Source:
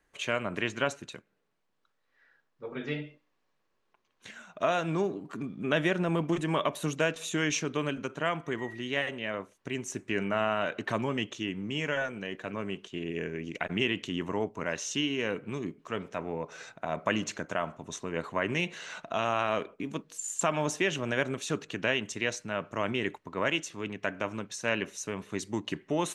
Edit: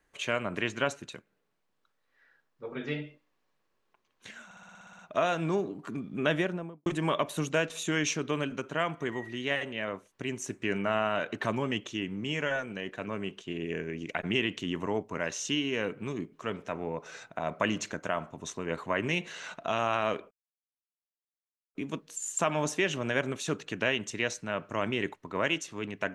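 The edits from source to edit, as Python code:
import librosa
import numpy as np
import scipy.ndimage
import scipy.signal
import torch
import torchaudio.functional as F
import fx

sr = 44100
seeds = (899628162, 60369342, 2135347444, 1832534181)

y = fx.studio_fade_out(x, sr, start_s=5.74, length_s=0.58)
y = fx.edit(y, sr, fx.stutter(start_s=4.45, slice_s=0.06, count=10),
    fx.insert_silence(at_s=19.77, length_s=1.44), tone=tone)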